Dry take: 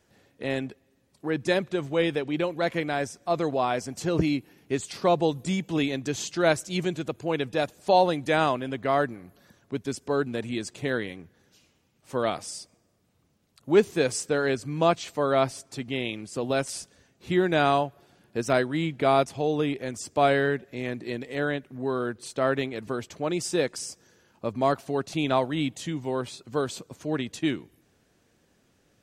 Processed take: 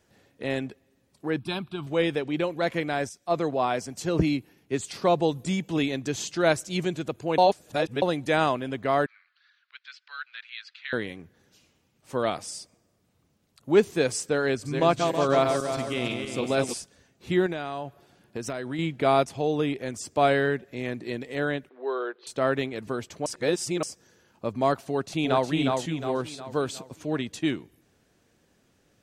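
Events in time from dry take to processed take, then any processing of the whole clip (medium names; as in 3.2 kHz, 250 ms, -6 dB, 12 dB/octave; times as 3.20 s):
1.39–1.87 s: static phaser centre 1.9 kHz, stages 6
3.09–4.86 s: three bands expanded up and down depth 40%
7.38–8.02 s: reverse
9.06–10.93 s: elliptic band-pass 1.4–4.4 kHz, stop band 70 dB
14.48–16.74 s: backward echo that repeats 161 ms, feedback 61%, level -4.5 dB
17.46–18.79 s: compression 12:1, threshold -27 dBFS
21.69–22.27 s: elliptic band-pass 380–3800 Hz
23.26–23.83 s: reverse
24.87–25.49 s: echo throw 360 ms, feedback 45%, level -3.5 dB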